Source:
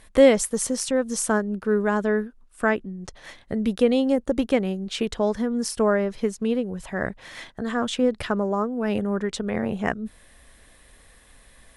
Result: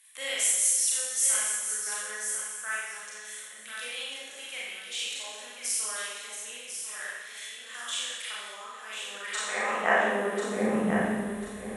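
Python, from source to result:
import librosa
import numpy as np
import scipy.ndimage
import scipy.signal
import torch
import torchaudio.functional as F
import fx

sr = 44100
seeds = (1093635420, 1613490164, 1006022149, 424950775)

y = fx.peak_eq(x, sr, hz=4700.0, db=-11.5, octaves=0.73)
y = fx.echo_feedback(y, sr, ms=1043, feedback_pct=27, wet_db=-8)
y = fx.filter_sweep_highpass(y, sr, from_hz=3500.0, to_hz=65.0, start_s=8.93, end_s=11.31, q=0.82)
y = fx.rev_schroeder(y, sr, rt60_s=1.3, comb_ms=29, drr_db=-7.0)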